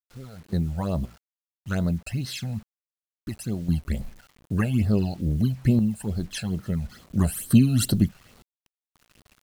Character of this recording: phasing stages 12, 2.3 Hz, lowest notch 330–2500 Hz; random-step tremolo 1.9 Hz, depth 100%; a quantiser's noise floor 10-bit, dither none

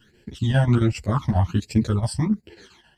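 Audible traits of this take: phasing stages 12, 1.3 Hz, lowest notch 380–1200 Hz; chopped level 7.4 Hz, depth 60%, duty 75%; a shimmering, thickened sound

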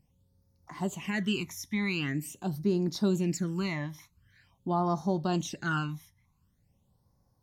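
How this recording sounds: phasing stages 12, 0.45 Hz, lowest notch 460–2900 Hz

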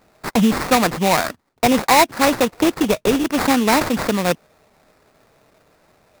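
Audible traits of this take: aliases and images of a low sample rate 3100 Hz, jitter 20%

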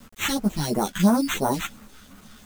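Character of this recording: aliases and images of a low sample rate 4900 Hz, jitter 0%; phasing stages 2, 2.9 Hz, lowest notch 480–3800 Hz; a quantiser's noise floor 8-bit, dither none; a shimmering, thickened sound

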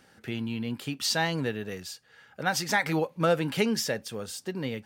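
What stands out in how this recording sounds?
noise floor -60 dBFS; spectral tilt -4.0 dB/oct

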